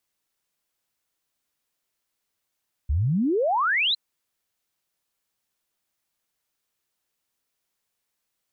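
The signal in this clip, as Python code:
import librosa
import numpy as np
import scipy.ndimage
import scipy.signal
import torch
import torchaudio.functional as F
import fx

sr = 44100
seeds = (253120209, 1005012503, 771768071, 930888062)

y = fx.ess(sr, length_s=1.06, from_hz=64.0, to_hz=4200.0, level_db=-19.5)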